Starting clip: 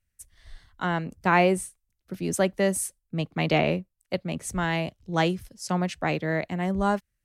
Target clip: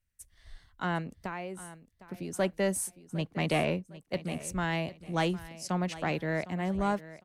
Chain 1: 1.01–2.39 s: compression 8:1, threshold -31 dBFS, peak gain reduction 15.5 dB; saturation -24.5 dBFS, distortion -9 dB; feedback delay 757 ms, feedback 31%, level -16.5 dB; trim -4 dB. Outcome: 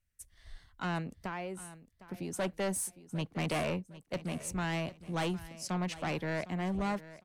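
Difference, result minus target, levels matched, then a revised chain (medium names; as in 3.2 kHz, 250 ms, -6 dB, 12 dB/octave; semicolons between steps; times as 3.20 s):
saturation: distortion +12 dB
1.01–2.39 s: compression 8:1, threshold -31 dBFS, peak gain reduction 15.5 dB; saturation -13.5 dBFS, distortion -21 dB; feedback delay 757 ms, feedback 31%, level -16.5 dB; trim -4 dB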